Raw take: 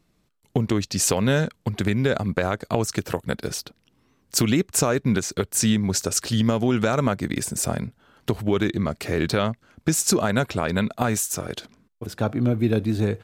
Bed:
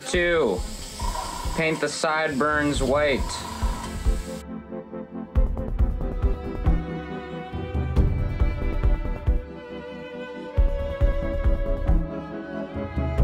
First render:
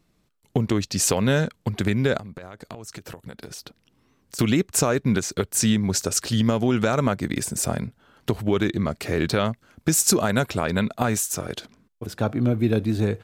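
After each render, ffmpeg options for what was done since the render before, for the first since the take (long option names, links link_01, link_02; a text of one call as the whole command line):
ffmpeg -i in.wav -filter_complex "[0:a]asettb=1/sr,asplit=3[link_01][link_02][link_03];[link_01]atrim=end=2.174[link_04];[link_02]atrim=start=2.17:end=4.39,asetpts=PTS-STARTPTS,afade=type=in:duration=0.004:curve=qsin,afade=type=out:start_time=2.216:duration=0.004:curve=qsin,acompressor=threshold=-33dB:ratio=20:attack=3.2:release=140:knee=1:detection=peak[link_05];[link_03]atrim=start=4.386[link_06];[link_04][link_05]acrossfade=duration=0.004:curve1=hsin:curve2=qsin[link_07];[link_07][link_06]acrossfade=duration=0.004:curve1=qsin:curve2=hsin,asettb=1/sr,asplit=3[link_08][link_09][link_10];[link_08]atrim=end=9.454[link_11];[link_09]atrim=start=9.45:end=10.63,asetpts=PTS-STARTPTS,afade=type=in:duration=0.004:curve=qsin,afade=type=out:start_time=1.176:duration=0.004:curve=qsin,highshelf=frequency=8900:gain=7[link_12];[link_10]atrim=start=10.626[link_13];[link_11][link_12]acrossfade=duration=0.004:curve1=hsin:curve2=qsin[link_14];[link_14][link_13]acrossfade=duration=0.004:curve1=qsin:curve2=hsin" out.wav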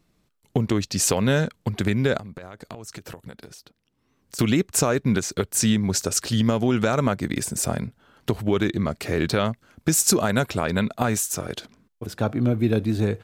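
ffmpeg -i in.wav -filter_complex "[0:a]asplit=3[link_01][link_02][link_03];[link_01]atrim=end=3.63,asetpts=PTS-STARTPTS,afade=type=out:start_time=3.22:duration=0.41:silence=0.334965[link_04];[link_02]atrim=start=3.63:end=3.95,asetpts=PTS-STARTPTS,volume=-9.5dB[link_05];[link_03]atrim=start=3.95,asetpts=PTS-STARTPTS,afade=type=in:duration=0.41:silence=0.334965[link_06];[link_04][link_05][link_06]concat=n=3:v=0:a=1" out.wav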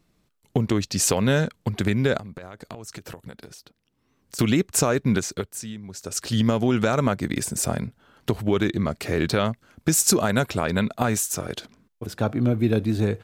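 ffmpeg -i in.wav -filter_complex "[0:a]asplit=3[link_01][link_02][link_03];[link_01]atrim=end=5.63,asetpts=PTS-STARTPTS,afade=type=out:start_time=5.2:duration=0.43:silence=0.16788[link_04];[link_02]atrim=start=5.63:end=5.96,asetpts=PTS-STARTPTS,volume=-15.5dB[link_05];[link_03]atrim=start=5.96,asetpts=PTS-STARTPTS,afade=type=in:duration=0.43:silence=0.16788[link_06];[link_04][link_05][link_06]concat=n=3:v=0:a=1" out.wav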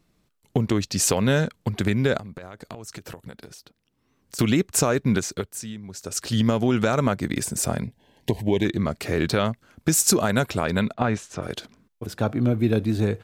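ffmpeg -i in.wav -filter_complex "[0:a]asettb=1/sr,asplit=3[link_01][link_02][link_03];[link_01]atrim=end=7.834[link_04];[link_02]atrim=start=7.83:end=8.65,asetpts=PTS-STARTPTS,afade=type=in:duration=0.004:curve=qsin,afade=type=out:start_time=0.816:duration=0.004:curve=qsin,asuperstop=centerf=1300:order=8:qfactor=2[link_05];[link_03]atrim=start=8.646[link_06];[link_04][link_05]acrossfade=duration=0.004:curve1=hsin:curve2=qsin[link_07];[link_07][link_06]acrossfade=duration=0.004:curve1=qsin:curve2=hsin,asplit=3[link_08][link_09][link_10];[link_08]afade=type=out:start_time=10.92:duration=0.02[link_11];[link_09]lowpass=3100,afade=type=in:start_time=10.92:duration=0.02,afade=type=out:start_time=11.41:duration=0.02[link_12];[link_10]afade=type=in:start_time=11.41:duration=0.02[link_13];[link_11][link_12][link_13]amix=inputs=3:normalize=0" out.wav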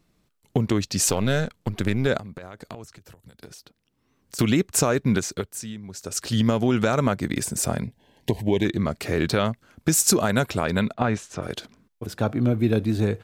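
ffmpeg -i in.wav -filter_complex "[0:a]asettb=1/sr,asplit=3[link_01][link_02][link_03];[link_01]atrim=end=1.094[link_04];[link_02]atrim=start=1.09:end=2.07,asetpts=PTS-STARTPTS,afade=type=in:duration=0.004:curve=qsin,afade=type=out:start_time=0.976:duration=0.004:curve=qsin,aeval=exprs='if(lt(val(0),0),0.447*val(0),val(0))':channel_layout=same[link_05];[link_03]atrim=start=2.066[link_06];[link_04][link_05]acrossfade=duration=0.004:curve1=hsin:curve2=qsin[link_07];[link_07][link_06]acrossfade=duration=0.004:curve1=qsin:curve2=hsin,asettb=1/sr,asplit=3[link_08][link_09][link_10];[link_08]atrim=end=2.844[link_11];[link_09]atrim=start=2.84:end=3.42,asetpts=PTS-STARTPTS,afade=type=in:duration=0.004:curve=qsin,afade=type=out:start_time=0.576:duration=0.004:curve=qsin,acrossover=split=110|4100[link_12][link_13][link_14];[link_12]acompressor=threshold=-50dB:ratio=4[link_15];[link_13]acompressor=threshold=-52dB:ratio=4[link_16];[link_14]acompressor=threshold=-54dB:ratio=4[link_17];[link_15][link_16][link_17]amix=inputs=3:normalize=0[link_18];[link_10]atrim=start=3.416[link_19];[link_11][link_18]acrossfade=duration=0.004:curve1=hsin:curve2=qsin[link_20];[link_20][link_19]acrossfade=duration=0.004:curve1=qsin:curve2=hsin" out.wav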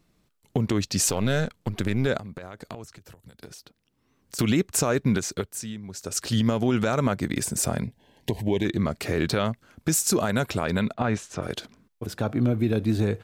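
ffmpeg -i in.wav -af "alimiter=limit=-13dB:level=0:latency=1:release=89" out.wav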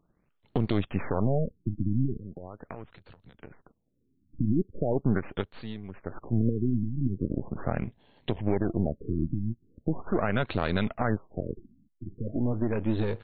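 ffmpeg -i in.wav -af "aeval=exprs='if(lt(val(0),0),0.251*val(0),val(0))':channel_layout=same,afftfilt=real='re*lt(b*sr/1024,320*pow(4600/320,0.5+0.5*sin(2*PI*0.4*pts/sr)))':imag='im*lt(b*sr/1024,320*pow(4600/320,0.5+0.5*sin(2*PI*0.4*pts/sr)))':win_size=1024:overlap=0.75" out.wav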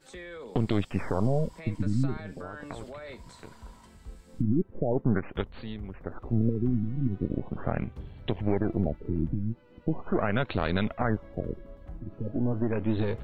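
ffmpeg -i in.wav -i bed.wav -filter_complex "[1:a]volume=-21.5dB[link_01];[0:a][link_01]amix=inputs=2:normalize=0" out.wav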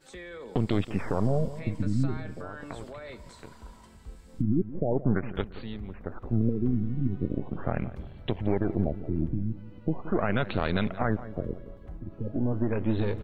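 ffmpeg -i in.wav -filter_complex "[0:a]asplit=2[link_01][link_02];[link_02]adelay=173,lowpass=frequency=1800:poles=1,volume=-14.5dB,asplit=2[link_03][link_04];[link_04]adelay=173,lowpass=frequency=1800:poles=1,volume=0.41,asplit=2[link_05][link_06];[link_06]adelay=173,lowpass=frequency=1800:poles=1,volume=0.41,asplit=2[link_07][link_08];[link_08]adelay=173,lowpass=frequency=1800:poles=1,volume=0.41[link_09];[link_01][link_03][link_05][link_07][link_09]amix=inputs=5:normalize=0" out.wav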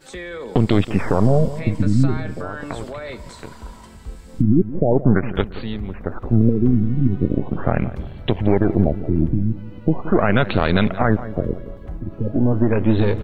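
ffmpeg -i in.wav -af "volume=10.5dB,alimiter=limit=-3dB:level=0:latency=1" out.wav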